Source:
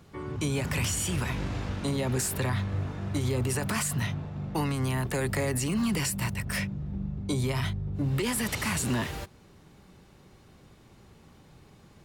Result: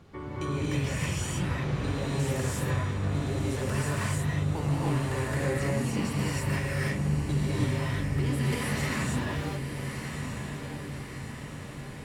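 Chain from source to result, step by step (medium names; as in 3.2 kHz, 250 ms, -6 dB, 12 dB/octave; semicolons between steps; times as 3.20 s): compression 6:1, threshold -34 dBFS, peak gain reduction 9.5 dB; low-pass 3.9 kHz 6 dB/octave; on a send: echo that smears into a reverb 1250 ms, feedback 59%, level -7 dB; on the sum: gated-style reverb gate 350 ms rising, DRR -6.5 dB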